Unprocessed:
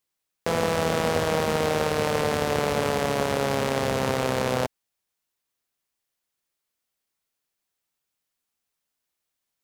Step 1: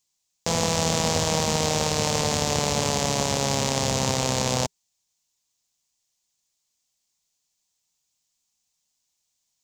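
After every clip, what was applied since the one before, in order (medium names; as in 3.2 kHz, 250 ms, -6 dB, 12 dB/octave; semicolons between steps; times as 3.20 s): FFT filter 170 Hz 0 dB, 410 Hz -8 dB, 950 Hz -2 dB, 1.4 kHz -10 dB, 7 kHz +11 dB, 10 kHz -4 dB; trim +3.5 dB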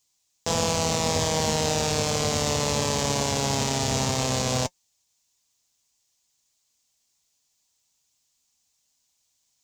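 peak limiter -12.5 dBFS, peak gain reduction 8.5 dB; comb of notches 180 Hz; trim +5.5 dB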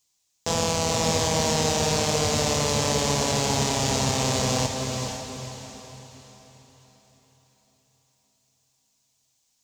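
echo that smears into a reverb 474 ms, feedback 44%, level -5 dB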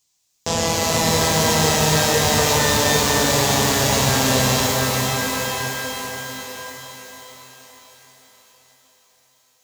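thinning echo 1017 ms, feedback 35%, high-pass 330 Hz, level -10.5 dB; pitch-shifted reverb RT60 2.6 s, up +12 st, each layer -2 dB, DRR 3.5 dB; trim +3 dB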